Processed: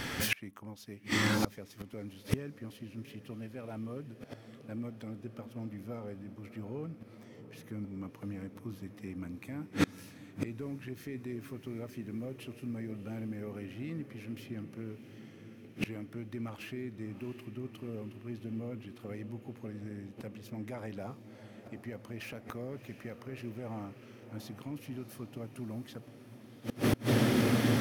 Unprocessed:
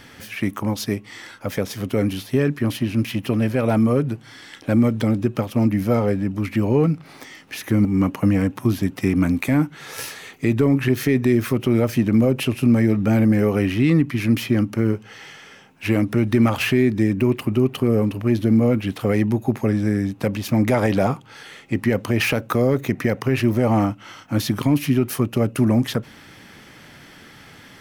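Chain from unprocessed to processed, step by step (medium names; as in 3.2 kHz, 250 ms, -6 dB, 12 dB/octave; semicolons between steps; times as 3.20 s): echo that smears into a reverb 694 ms, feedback 72%, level -12.5 dB; inverted gate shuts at -21 dBFS, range -30 dB; trim +6.5 dB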